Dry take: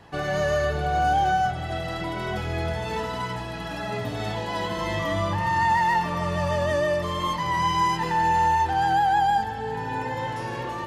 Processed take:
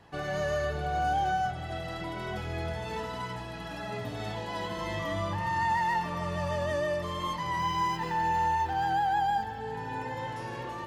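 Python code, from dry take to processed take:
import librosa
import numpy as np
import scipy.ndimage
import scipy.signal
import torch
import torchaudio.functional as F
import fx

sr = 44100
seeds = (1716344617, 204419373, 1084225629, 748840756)

y = fx.resample_linear(x, sr, factor=2, at=(7.58, 9.61))
y = F.gain(torch.from_numpy(y), -6.5).numpy()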